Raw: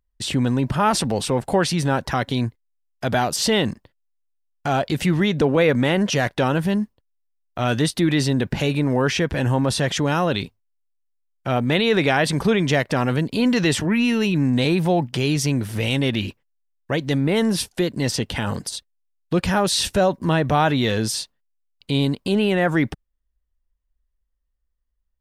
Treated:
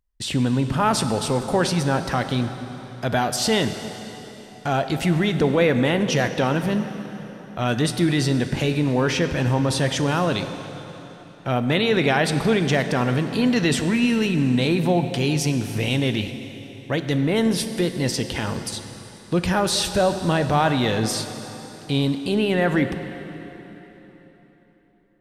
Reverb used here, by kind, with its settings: plate-style reverb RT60 3.9 s, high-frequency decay 0.85×, DRR 8 dB; trim -1.5 dB

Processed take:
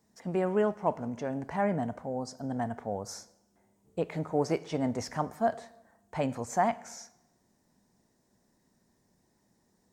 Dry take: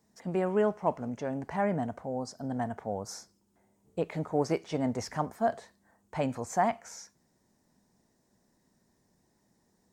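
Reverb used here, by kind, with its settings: plate-style reverb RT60 1 s, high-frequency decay 0.8×, DRR 17.5 dB

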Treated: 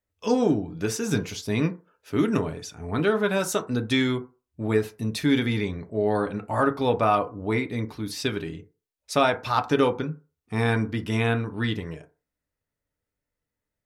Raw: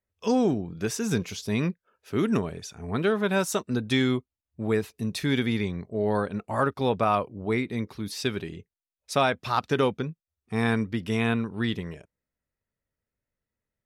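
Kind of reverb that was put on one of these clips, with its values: FDN reverb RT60 0.33 s, low-frequency decay 0.8×, high-frequency decay 0.4×, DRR 5.5 dB; trim +1 dB

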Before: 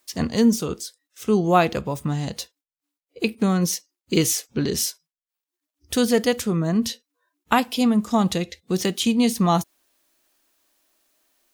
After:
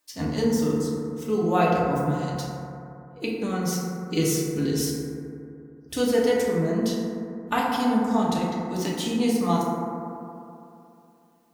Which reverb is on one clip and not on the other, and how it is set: FDN reverb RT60 2.8 s, high-frequency decay 0.25×, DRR -5 dB; trim -9 dB

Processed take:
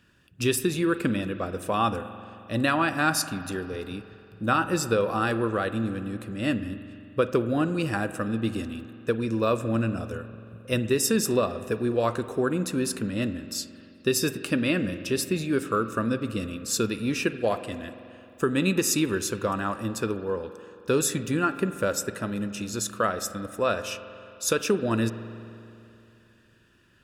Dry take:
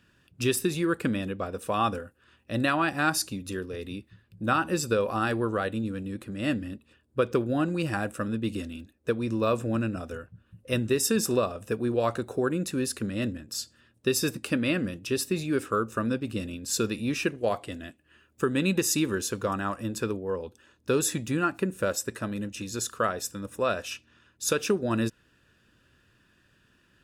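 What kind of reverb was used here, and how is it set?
spring tank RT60 2.8 s, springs 44 ms, chirp 40 ms, DRR 11.5 dB; trim +1.5 dB

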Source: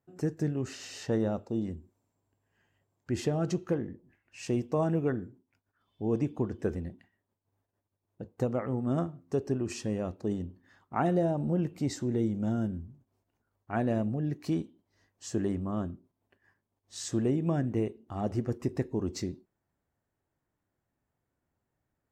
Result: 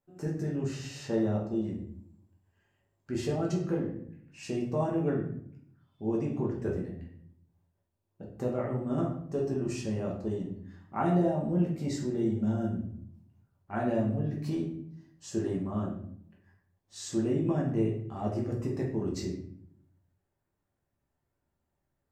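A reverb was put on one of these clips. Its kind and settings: simulated room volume 110 m³, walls mixed, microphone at 1.2 m; trim -5.5 dB

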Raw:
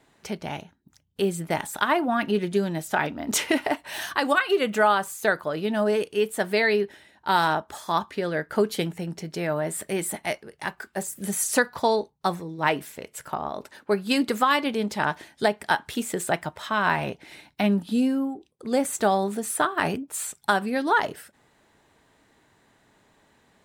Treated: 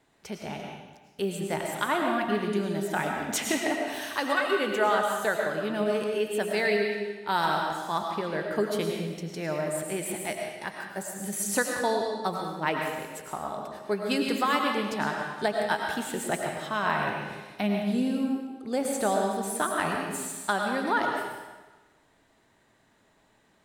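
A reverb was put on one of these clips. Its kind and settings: algorithmic reverb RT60 1.2 s, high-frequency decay 0.95×, pre-delay 65 ms, DRR 1 dB; trim -5.5 dB

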